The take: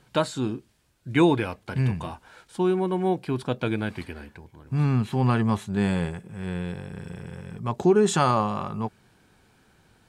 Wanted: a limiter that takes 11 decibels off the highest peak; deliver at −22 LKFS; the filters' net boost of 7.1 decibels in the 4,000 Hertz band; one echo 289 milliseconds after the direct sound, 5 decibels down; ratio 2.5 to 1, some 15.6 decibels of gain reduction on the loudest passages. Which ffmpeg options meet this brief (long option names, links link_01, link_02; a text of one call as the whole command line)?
ffmpeg -i in.wav -af "equalizer=frequency=4000:width_type=o:gain=8.5,acompressor=threshold=-39dB:ratio=2.5,alimiter=level_in=7dB:limit=-24dB:level=0:latency=1,volume=-7dB,aecho=1:1:289:0.562,volume=18.5dB" out.wav